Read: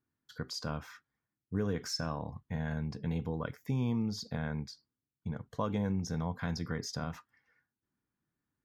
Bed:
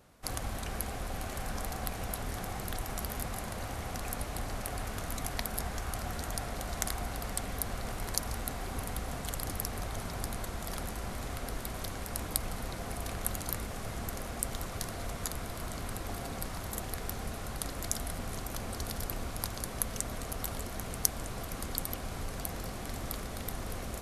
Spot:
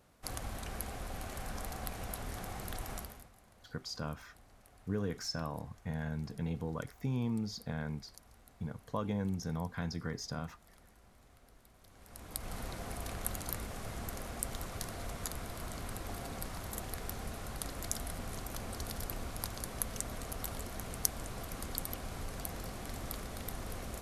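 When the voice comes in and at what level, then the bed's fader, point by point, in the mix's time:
3.35 s, -2.5 dB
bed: 2.96 s -4.5 dB
3.33 s -24 dB
11.81 s -24 dB
12.55 s -3.5 dB

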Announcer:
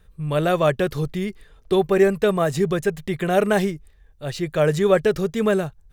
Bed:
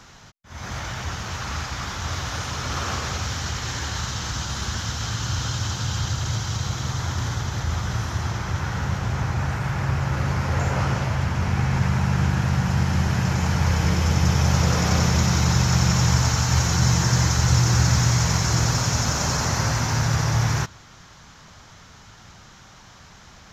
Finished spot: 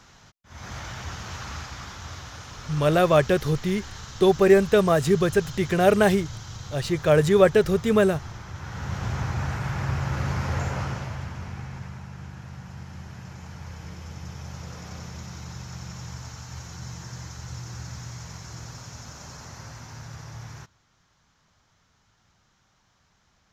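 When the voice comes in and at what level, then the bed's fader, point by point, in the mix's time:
2.50 s, +0.5 dB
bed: 1.38 s -5.5 dB
2.37 s -12 dB
8.54 s -12 dB
9.04 s -3.5 dB
10.49 s -3.5 dB
12.1 s -19 dB

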